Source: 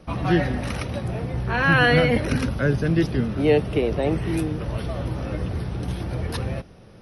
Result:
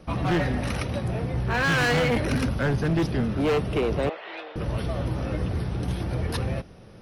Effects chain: 4.09–4.56 s: Chebyshev band-pass 570–3800 Hz, order 3; hard clipper -19.5 dBFS, distortion -8 dB

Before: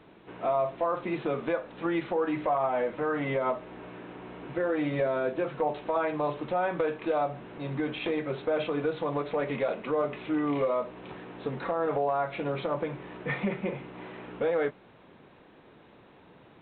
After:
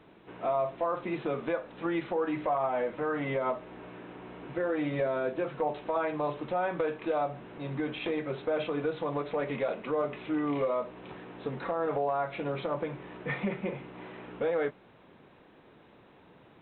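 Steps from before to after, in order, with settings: band-stop 4.3 kHz, Q 24; trim -2 dB

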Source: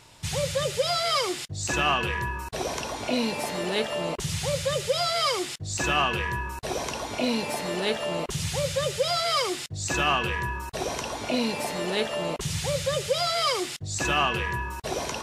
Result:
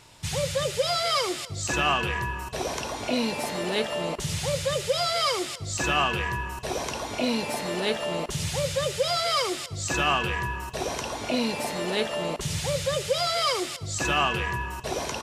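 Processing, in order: on a send: feedback delay 259 ms, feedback 56%, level -20 dB

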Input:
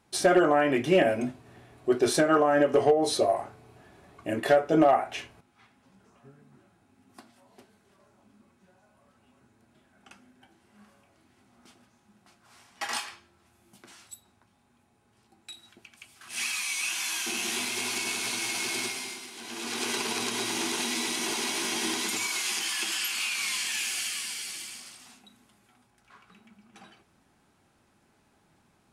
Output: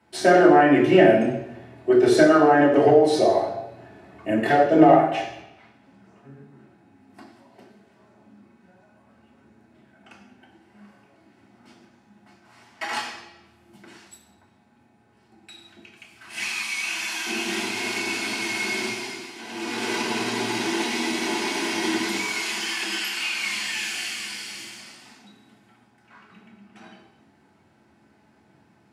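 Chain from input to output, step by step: high-pass 82 Hz; band-stop 6.6 kHz, Q 29; reverberation RT60 0.90 s, pre-delay 3 ms, DRR -3 dB; trim -6.5 dB

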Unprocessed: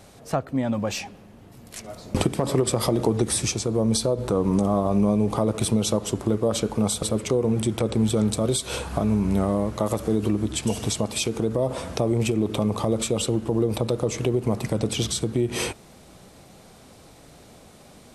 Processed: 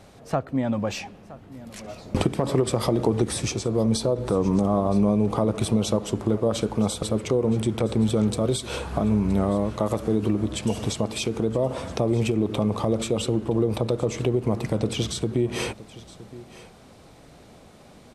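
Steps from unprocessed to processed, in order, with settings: treble shelf 6.2 kHz -9.5 dB; delay 969 ms -18.5 dB

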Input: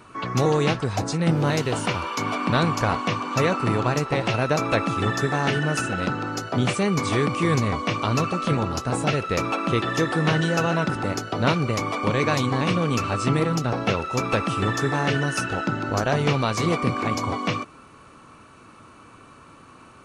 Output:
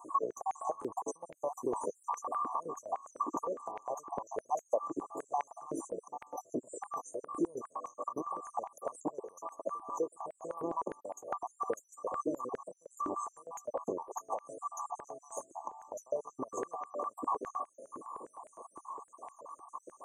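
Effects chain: random holes in the spectrogram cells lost 47%; compression 10:1, threshold -37 dBFS, peak gain reduction 20 dB; brick-wall FIR band-stop 1.2–5.9 kHz; buffer glitch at 0.80 s, samples 512, times 3; step-sequenced high-pass 9.8 Hz 330–2200 Hz; trim +1.5 dB

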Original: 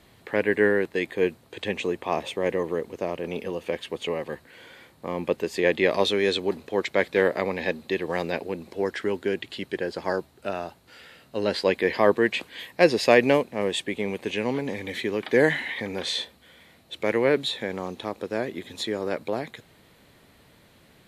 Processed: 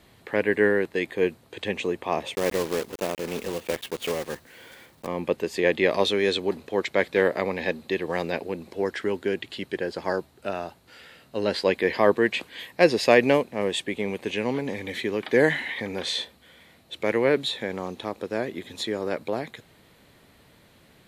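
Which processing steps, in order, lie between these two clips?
2.35–5.07 s: block-companded coder 3-bit

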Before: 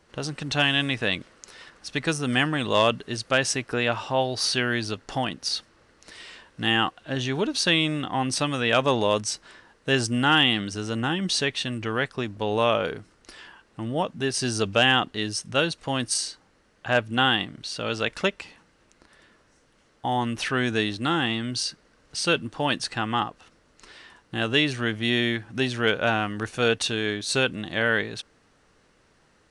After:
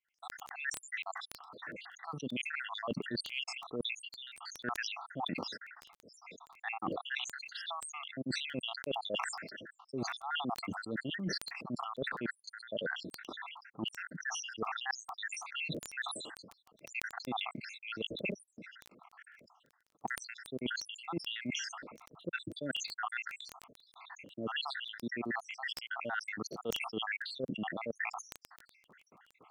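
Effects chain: random holes in the spectrogram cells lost 82%; gate with hold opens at -56 dBFS; Chebyshev band-pass 180–1800 Hz, order 2; reverse; compression 10:1, threshold -41 dBFS, peak gain reduction 21 dB; reverse; crackle 11 per s -65 dBFS; decay stretcher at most 42 dB/s; trim +5.5 dB

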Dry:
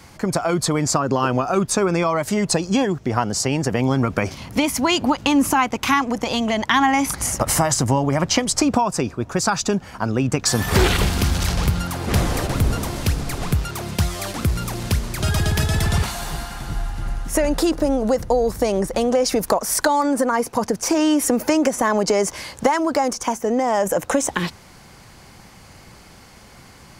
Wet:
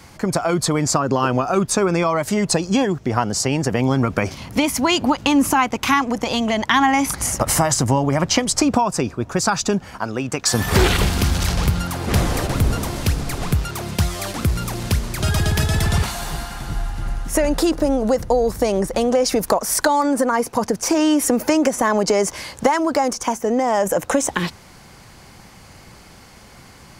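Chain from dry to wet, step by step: 9.98–10.54 s: bass shelf 280 Hz -10.5 dB; trim +1 dB

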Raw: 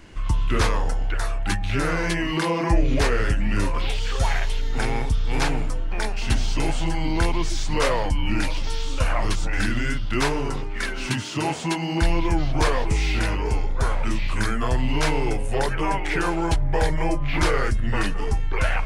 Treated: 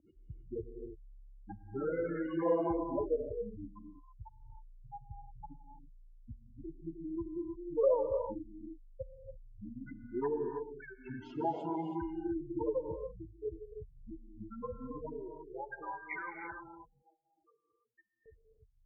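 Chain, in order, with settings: spectral gate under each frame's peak -10 dB strong; 16.68–18.26 s: differentiator; band-pass sweep 580 Hz -> 2.8 kHz, 14.84–15.99 s; gated-style reverb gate 350 ms rising, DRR 4.5 dB

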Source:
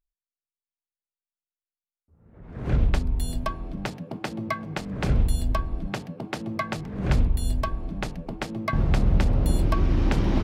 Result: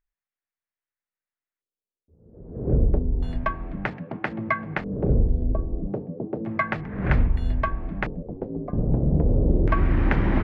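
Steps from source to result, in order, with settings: LFO low-pass square 0.31 Hz 460–1900 Hz; 8.22–9.22 s: ring modulator 41 Hz -> 120 Hz; trim +1 dB

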